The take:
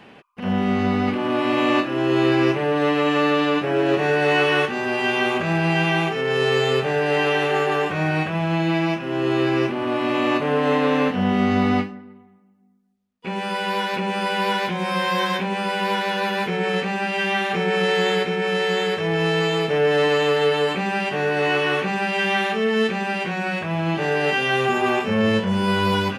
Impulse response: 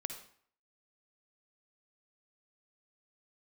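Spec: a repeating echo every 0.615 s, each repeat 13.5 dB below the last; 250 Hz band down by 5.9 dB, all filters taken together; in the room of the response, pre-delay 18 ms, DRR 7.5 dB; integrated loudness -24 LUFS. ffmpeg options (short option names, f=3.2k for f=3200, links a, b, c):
-filter_complex "[0:a]equalizer=f=250:t=o:g=-8.5,aecho=1:1:615|1230:0.211|0.0444,asplit=2[a][b];[1:a]atrim=start_sample=2205,adelay=18[c];[b][c]afir=irnorm=-1:irlink=0,volume=-7dB[d];[a][d]amix=inputs=2:normalize=0,volume=-2.5dB"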